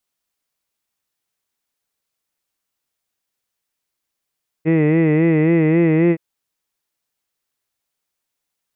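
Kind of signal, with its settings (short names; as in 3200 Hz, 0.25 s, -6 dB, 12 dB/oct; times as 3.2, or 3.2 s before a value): formant-synthesis vowel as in hid, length 1.52 s, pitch 156 Hz, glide +1 st, vibrato 3.7 Hz, vibrato depth 0.85 st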